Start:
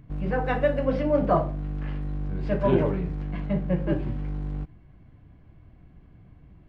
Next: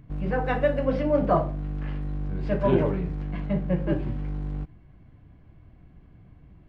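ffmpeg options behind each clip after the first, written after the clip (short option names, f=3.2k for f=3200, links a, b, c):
-af anull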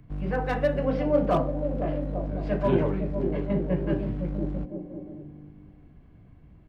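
-filter_complex "[0:a]acrossover=split=150|730[a][b][c];[b]aecho=1:1:510|841.5|1057|1197|1288:0.631|0.398|0.251|0.158|0.1[d];[c]asoftclip=type=hard:threshold=-24.5dB[e];[a][d][e]amix=inputs=3:normalize=0,volume=-1.5dB"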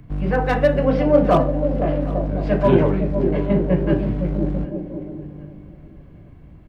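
-af "aecho=1:1:759|1518|2277:0.112|0.0393|0.0137,volume=8dB"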